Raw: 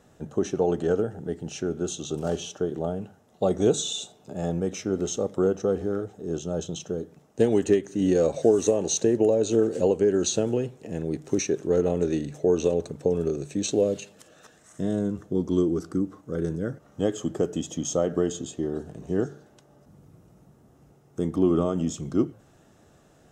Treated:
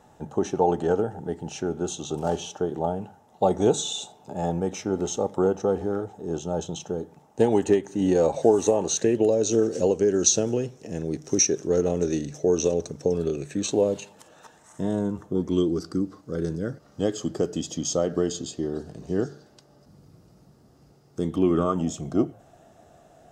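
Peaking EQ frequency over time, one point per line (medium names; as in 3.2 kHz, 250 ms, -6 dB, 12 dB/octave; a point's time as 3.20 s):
peaking EQ +13.5 dB 0.4 oct
8.79 s 860 Hz
9.36 s 5.7 kHz
13.11 s 5.7 kHz
13.72 s 910 Hz
15.25 s 910 Hz
15.73 s 4.7 kHz
21.20 s 4.7 kHz
21.89 s 690 Hz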